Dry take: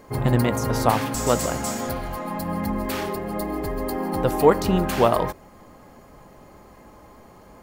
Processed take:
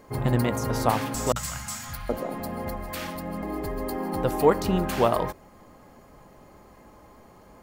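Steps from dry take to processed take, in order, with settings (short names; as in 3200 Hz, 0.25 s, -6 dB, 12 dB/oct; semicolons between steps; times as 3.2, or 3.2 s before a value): 1.32–3.43 three bands offset in time lows, highs, mids 40/770 ms, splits 170/970 Hz; gain -3.5 dB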